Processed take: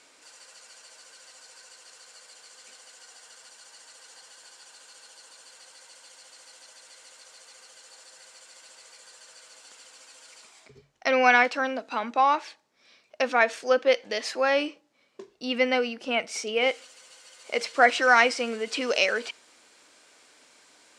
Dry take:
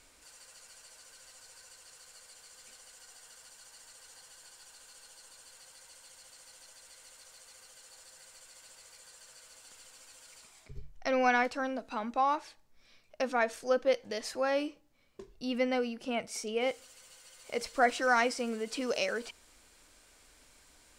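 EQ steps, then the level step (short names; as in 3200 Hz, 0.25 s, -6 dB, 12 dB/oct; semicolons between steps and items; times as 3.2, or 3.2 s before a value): dynamic EQ 2500 Hz, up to +6 dB, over -49 dBFS, Q 0.88; BPF 270–7600 Hz; +6.0 dB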